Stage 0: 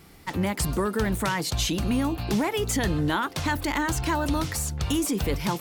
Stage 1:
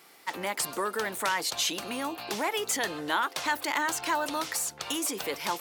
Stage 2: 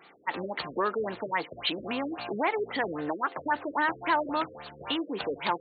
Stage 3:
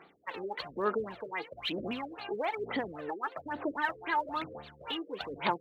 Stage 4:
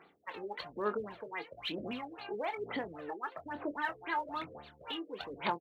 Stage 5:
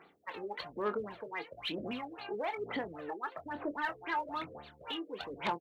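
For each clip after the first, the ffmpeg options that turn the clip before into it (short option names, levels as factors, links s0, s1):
-af "highpass=530"
-af "afftfilt=real='re*lt(b*sr/1024,530*pow(4600/530,0.5+0.5*sin(2*PI*3.7*pts/sr)))':imag='im*lt(b*sr/1024,530*pow(4600/530,0.5+0.5*sin(2*PI*3.7*pts/sr)))':win_size=1024:overlap=0.75,volume=1.41"
-af "aphaser=in_gain=1:out_gain=1:delay=2.5:decay=0.68:speed=1.1:type=sinusoidal,volume=0.422"
-filter_complex "[0:a]asplit=2[s0][s1];[s1]adelay=24,volume=0.266[s2];[s0][s2]amix=inputs=2:normalize=0,volume=0.631"
-af "asoftclip=type=tanh:threshold=0.0631,volume=1.12"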